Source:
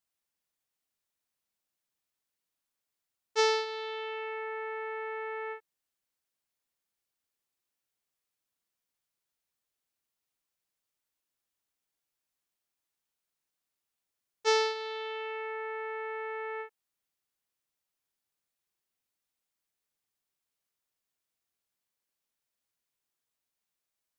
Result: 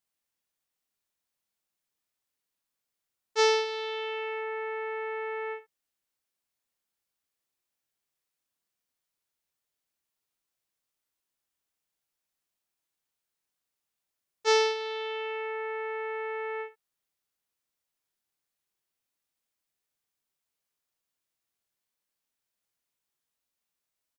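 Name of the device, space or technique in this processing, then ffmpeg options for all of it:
slapback doubling: -filter_complex "[0:a]asettb=1/sr,asplit=3[link_01][link_02][link_03];[link_01]atrim=end=3.654[link_04];[link_02]atrim=start=3.65:end=4.41,asetpts=PTS-STARTPTS,afade=type=in:duration=0.004:curve=qsin,afade=type=out:start_time=0.756:duration=0.004:curve=qsin,highshelf=frequency=5700:gain=5.5[link_05];[link_03]atrim=start=4.406[link_06];[link_04][link_05]acrossfade=duration=0.004:curve1=hsin:curve2=qsin[link_07];[link_07][link_06]acrossfade=duration=0.004:curve1=qsin:curve2=hsin,asplit=3[link_08][link_09][link_10];[link_09]adelay=25,volume=-8.5dB[link_11];[link_10]adelay=64,volume=-12dB[link_12];[link_08][link_11][link_12]amix=inputs=3:normalize=0"

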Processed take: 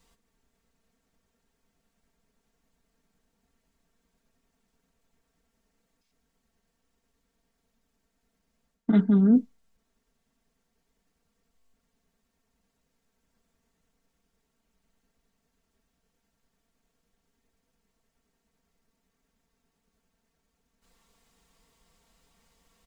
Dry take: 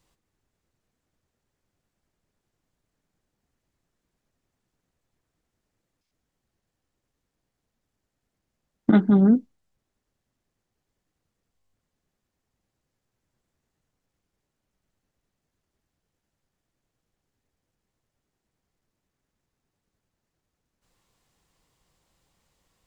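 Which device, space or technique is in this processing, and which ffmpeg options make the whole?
compression on the reversed sound: -af "areverse,acompressor=threshold=-24dB:ratio=6,areverse,aecho=1:1:4.4:0.87,volume=2dB"

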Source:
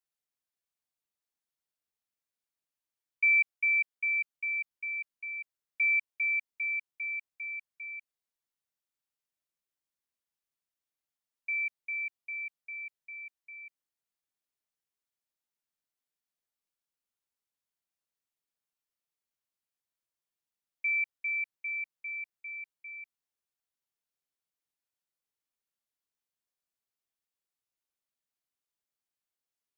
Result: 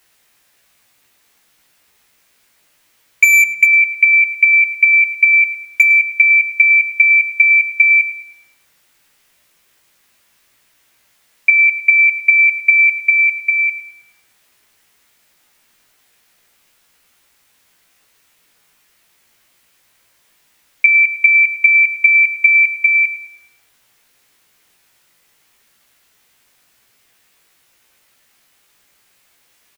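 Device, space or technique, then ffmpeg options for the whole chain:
loud club master: -filter_complex "[0:a]equalizer=frequency=2100:width_type=o:width=1.2:gain=5.5,acompressor=threshold=-27dB:ratio=1.5,asoftclip=type=hard:threshold=-20.5dB,alimiter=level_in=32dB:limit=-1dB:release=50:level=0:latency=1,asplit=2[link_01][link_02];[link_02]adelay=17,volume=-3.5dB[link_03];[link_01][link_03]amix=inputs=2:normalize=0,asplit=2[link_04][link_05];[link_05]adelay=106,lowpass=frequency=2200:poles=1,volume=-10dB,asplit=2[link_06][link_07];[link_07]adelay=106,lowpass=frequency=2200:poles=1,volume=0.55,asplit=2[link_08][link_09];[link_09]adelay=106,lowpass=frequency=2200:poles=1,volume=0.55,asplit=2[link_10][link_11];[link_11]adelay=106,lowpass=frequency=2200:poles=1,volume=0.55,asplit=2[link_12][link_13];[link_13]adelay=106,lowpass=frequency=2200:poles=1,volume=0.55,asplit=2[link_14][link_15];[link_15]adelay=106,lowpass=frequency=2200:poles=1,volume=0.55[link_16];[link_04][link_06][link_08][link_10][link_12][link_14][link_16]amix=inputs=7:normalize=0,volume=-1dB"

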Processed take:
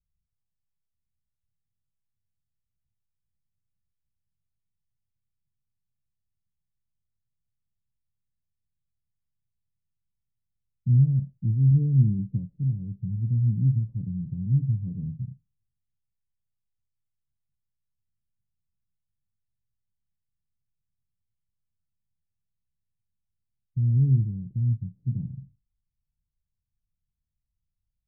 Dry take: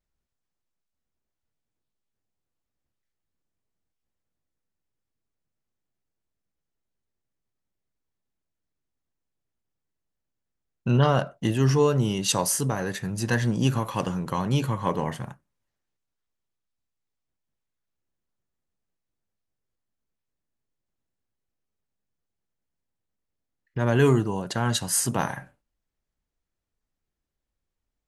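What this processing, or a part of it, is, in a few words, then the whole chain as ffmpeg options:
the neighbour's flat through the wall: -filter_complex "[0:a]asettb=1/sr,asplit=3[link_01][link_02][link_03];[link_01]atrim=end=11.714[link_04];[link_02]atrim=start=11.71:end=12.39,asetpts=PTS-STARTPTS,afade=type=in:duration=0.004:curve=qsin,afade=type=out:start_time=0.676:duration=0.004:curve=qsin,equalizer=frequency=290:width_type=o:width=2.1:gain=6.5[link_05];[link_03]atrim=start=12.386[link_06];[link_04][link_05]acrossfade=duration=0.004:curve1=hsin:curve2=qsin[link_07];[link_07][link_06]acrossfade=duration=0.004:curve1=qsin:curve2=hsin,lowpass=frequency=170:width=0.5412,lowpass=frequency=170:width=1.3066,equalizer=frequency=110:width_type=o:width=0.75:gain=3.5,volume=1.5dB"

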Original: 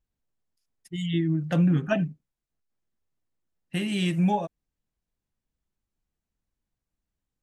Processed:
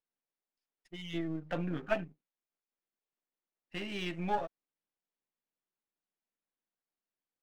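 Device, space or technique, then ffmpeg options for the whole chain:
crystal radio: -af "highpass=340,lowpass=3400,aeval=exprs='if(lt(val(0),0),0.447*val(0),val(0))':channel_layout=same,volume=-2.5dB"

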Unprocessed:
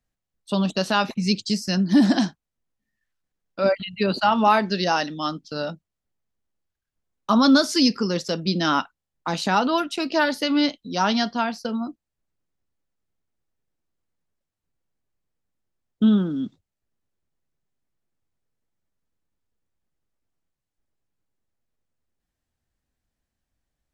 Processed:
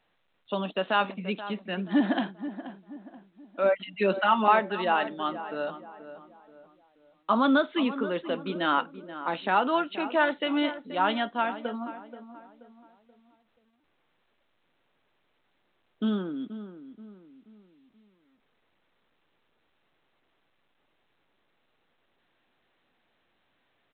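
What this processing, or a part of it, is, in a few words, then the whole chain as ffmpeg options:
telephone: -filter_complex "[0:a]asettb=1/sr,asplit=3[link_01][link_02][link_03];[link_01]atrim=end=3.824[link_04];[link_02]atrim=start=3.82:end=4.48,asetpts=PTS-STARTPTS,afade=type=in:duration=0.004:curve=qsin,afade=type=out:start_time=0.656:duration=0.004:curve=qsin,aecho=1:1:5.4:0.73,atrim=end_sample=29106[link_05];[link_03]atrim=start=4.476[link_06];[link_04][link_05]acrossfade=duration=0.004:curve1=hsin:curve2=qsin[link_07];[link_07][link_06]acrossfade=duration=0.004:curve1=qsin:curve2=hsin,highpass=330,lowpass=3400,asplit=2[link_08][link_09];[link_09]adelay=480,lowpass=frequency=1500:poles=1,volume=-12dB,asplit=2[link_10][link_11];[link_11]adelay=480,lowpass=frequency=1500:poles=1,volume=0.41,asplit=2[link_12][link_13];[link_13]adelay=480,lowpass=frequency=1500:poles=1,volume=0.41,asplit=2[link_14][link_15];[link_15]adelay=480,lowpass=frequency=1500:poles=1,volume=0.41[link_16];[link_08][link_10][link_12][link_14][link_16]amix=inputs=5:normalize=0,volume=-2.5dB" -ar 8000 -c:a pcm_alaw

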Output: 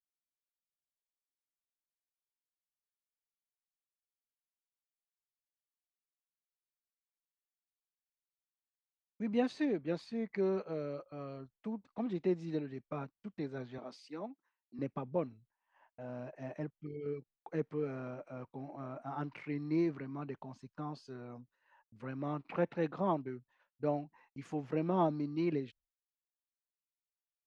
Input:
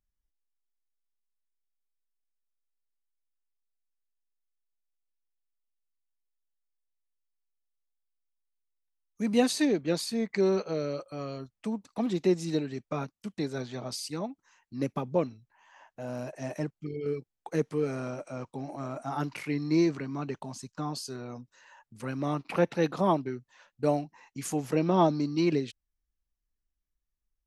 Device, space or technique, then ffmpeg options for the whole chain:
hearing-loss simulation: -filter_complex "[0:a]lowpass=2500,agate=range=-33dB:threshold=-51dB:ratio=3:detection=peak,asettb=1/sr,asplit=3[link_01][link_02][link_03];[link_01]atrim=end=13.784[link_04];[link_02]atrim=start=13.78:end=14.79,asetpts=PTS-STARTPTS,afade=type=in:duration=0.004:curve=qsin,afade=type=out:start_time=1.006:duration=0.004:curve=qsin,highpass=frequency=210:width=0.5412,highpass=frequency=210:width=1.3066[link_05];[link_03]atrim=start=14.786[link_06];[link_04][link_05]acrossfade=duration=0.004:curve1=hsin:curve2=qsin[link_07];[link_07][link_06]acrossfade=duration=0.004:curve1=qsin:curve2=hsin,volume=-7.5dB"

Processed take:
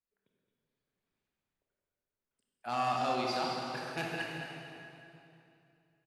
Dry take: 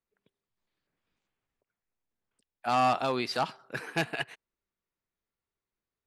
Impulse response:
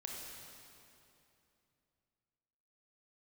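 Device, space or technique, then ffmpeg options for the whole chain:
cave: -filter_complex "[0:a]aecho=1:1:219:0.316[link_01];[1:a]atrim=start_sample=2205[link_02];[link_01][link_02]afir=irnorm=-1:irlink=0,asettb=1/sr,asplit=3[link_03][link_04][link_05];[link_03]atrim=end=2.974[link_06];[link_04]atrim=start=2.97:end=3.96,asetpts=PTS-STARTPTS,afade=type=in:duration=0.004:curve=qsin,afade=type=out:start_time=0.986:duration=0.004:curve=qsin,equalizer=frequency=5600:width_type=o:width=1:gain=4.5[link_07];[link_05]atrim=start=3.956[link_08];[link_06][link_07]acrossfade=duration=0.004:curve1=hsin:curve2=qsin[link_09];[link_09][link_08]acrossfade=duration=0.004:curve1=qsin:curve2=hsin,volume=-3.5dB"

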